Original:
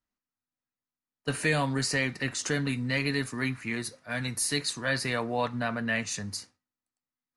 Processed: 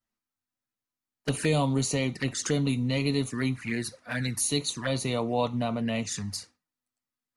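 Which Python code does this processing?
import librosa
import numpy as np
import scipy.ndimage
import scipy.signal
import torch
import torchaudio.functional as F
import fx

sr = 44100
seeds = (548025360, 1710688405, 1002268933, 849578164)

y = fx.dynamic_eq(x, sr, hz=2500.0, q=2.2, threshold_db=-41.0, ratio=4.0, max_db=-4)
y = fx.env_flanger(y, sr, rest_ms=9.0, full_db=-27.5)
y = y * 10.0 ** (4.0 / 20.0)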